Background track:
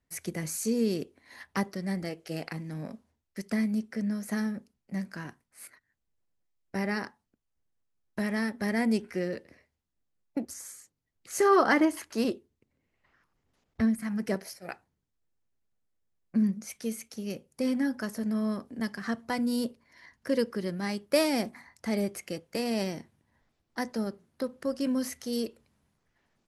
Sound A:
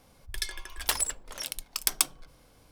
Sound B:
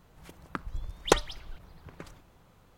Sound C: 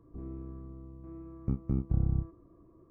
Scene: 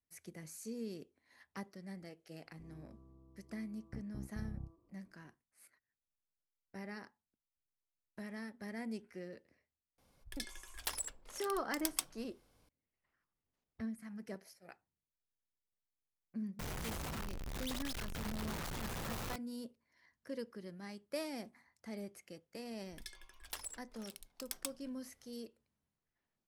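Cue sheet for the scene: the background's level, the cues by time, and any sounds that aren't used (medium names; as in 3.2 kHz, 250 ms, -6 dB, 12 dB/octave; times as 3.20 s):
background track -16 dB
2.45 s: add C -16.5 dB + resonant low-pass 920 Hz, resonance Q 2.4
9.98 s: add A -12 dB
16.59 s: add B -6.5 dB + one-bit comparator
22.64 s: add A -17.5 dB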